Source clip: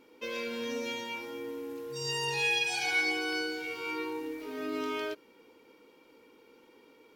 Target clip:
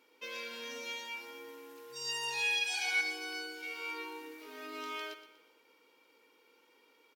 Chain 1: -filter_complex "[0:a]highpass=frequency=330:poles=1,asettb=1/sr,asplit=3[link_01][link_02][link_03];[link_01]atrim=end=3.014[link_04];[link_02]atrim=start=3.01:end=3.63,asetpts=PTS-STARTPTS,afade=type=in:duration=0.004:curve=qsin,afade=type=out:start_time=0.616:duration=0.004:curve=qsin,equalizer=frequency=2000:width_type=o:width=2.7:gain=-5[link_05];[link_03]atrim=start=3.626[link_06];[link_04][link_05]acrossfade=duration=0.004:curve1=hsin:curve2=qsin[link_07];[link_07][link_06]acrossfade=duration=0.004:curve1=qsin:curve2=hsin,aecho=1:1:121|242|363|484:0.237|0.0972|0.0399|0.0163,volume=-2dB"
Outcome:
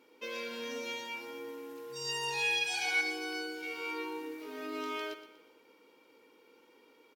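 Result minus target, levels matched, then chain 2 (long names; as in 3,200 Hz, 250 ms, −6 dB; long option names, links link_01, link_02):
250 Hz band +7.5 dB
-filter_complex "[0:a]highpass=frequency=1100:poles=1,asettb=1/sr,asplit=3[link_01][link_02][link_03];[link_01]atrim=end=3.014[link_04];[link_02]atrim=start=3.01:end=3.63,asetpts=PTS-STARTPTS,afade=type=in:duration=0.004:curve=qsin,afade=type=out:start_time=0.616:duration=0.004:curve=qsin,equalizer=frequency=2000:width_type=o:width=2.7:gain=-5[link_05];[link_03]atrim=start=3.626[link_06];[link_04][link_05]acrossfade=duration=0.004:curve1=hsin:curve2=qsin[link_07];[link_07][link_06]acrossfade=duration=0.004:curve1=qsin:curve2=hsin,aecho=1:1:121|242|363|484:0.237|0.0972|0.0399|0.0163,volume=-2dB"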